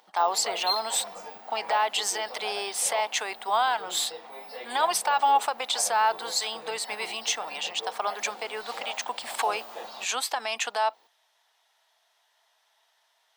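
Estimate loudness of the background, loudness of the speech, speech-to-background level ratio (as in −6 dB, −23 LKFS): −38.5 LKFS, −27.5 LKFS, 11.0 dB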